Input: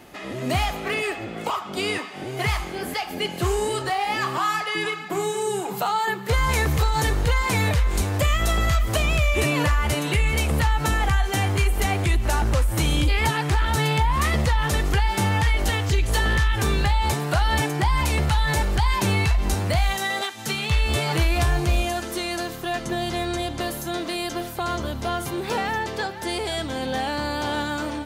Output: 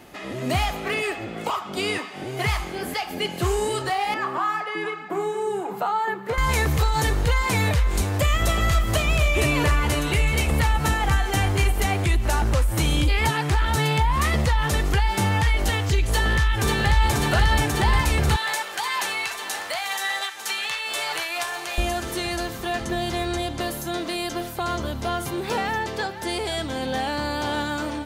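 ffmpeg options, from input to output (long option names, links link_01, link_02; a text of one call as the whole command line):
ffmpeg -i in.wav -filter_complex "[0:a]asettb=1/sr,asplit=3[link_01][link_02][link_03];[link_01]atrim=end=4.144[link_04];[link_02]atrim=start=4.14:end=6.38,asetpts=PTS-STARTPTS,afade=type=in:duration=0.004:curve=qsin,afade=type=out:start_time=2.236:duration=0.004:curve=qsin,acrossover=split=170 2100:gain=0.112 1 0.224[link_05][link_06][link_07];[link_05][link_06][link_07]amix=inputs=3:normalize=0[link_08];[link_03]atrim=start=6.376[link_09];[link_04][link_08]acrossfade=duration=0.004:curve1=hsin:curve2=qsin[link_10];[link_10][link_09]acrossfade=duration=0.004:curve1=qsin:curve2=hsin,asplit=3[link_11][link_12][link_13];[link_11]afade=type=out:start_time=8.33:duration=0.02[link_14];[link_12]aecho=1:1:260:0.355,afade=type=in:start_time=8.33:duration=0.02,afade=type=out:start_time=11.71:duration=0.02[link_15];[link_13]afade=type=in:start_time=11.71:duration=0.02[link_16];[link_14][link_15][link_16]amix=inputs=3:normalize=0,asplit=2[link_17][link_18];[link_18]afade=type=in:start_time=16.12:duration=0.01,afade=type=out:start_time=16.9:duration=0.01,aecho=0:1:540|1080|1620|2160|2700|3240|3780|4320|4860|5400|5940|6480:0.707946|0.601754|0.511491|0.434767|0.369552|0.314119|0.267001|0.226951|0.192909|0.163972|0.139376|0.11847[link_19];[link_17][link_19]amix=inputs=2:normalize=0,asettb=1/sr,asplit=3[link_20][link_21][link_22];[link_20]atrim=end=18.364[link_23];[link_21]atrim=start=18.36:end=21.78,asetpts=PTS-STARTPTS,afade=type=in:duration=0.004:curve=qsin,afade=type=out:start_time=3.416:duration=0.004:curve=qsin,highpass=790[link_24];[link_22]atrim=start=21.776[link_25];[link_23][link_24]acrossfade=duration=0.004:curve1=hsin:curve2=qsin[link_26];[link_26][link_25]acrossfade=duration=0.004:curve1=qsin:curve2=hsin" out.wav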